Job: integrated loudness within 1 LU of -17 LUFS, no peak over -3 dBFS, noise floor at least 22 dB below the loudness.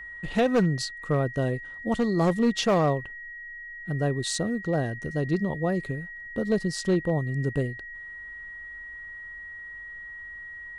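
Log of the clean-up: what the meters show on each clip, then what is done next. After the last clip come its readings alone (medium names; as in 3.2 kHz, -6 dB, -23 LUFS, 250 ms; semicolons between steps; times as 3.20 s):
clipped samples 0.8%; clipping level -16.5 dBFS; steady tone 1.9 kHz; tone level -38 dBFS; loudness -27.0 LUFS; peak level -16.5 dBFS; loudness target -17.0 LUFS
-> clip repair -16.5 dBFS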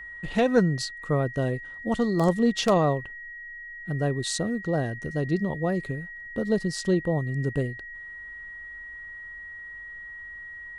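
clipped samples 0.0%; steady tone 1.9 kHz; tone level -38 dBFS
-> band-stop 1.9 kHz, Q 30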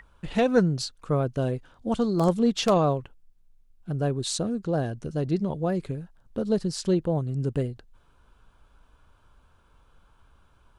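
steady tone not found; loudness -26.5 LUFS; peak level -7.5 dBFS; loudness target -17.0 LUFS
-> trim +9.5 dB; peak limiter -3 dBFS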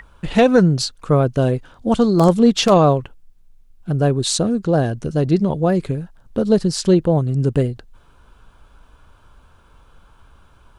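loudness -17.5 LUFS; peak level -3.0 dBFS; noise floor -51 dBFS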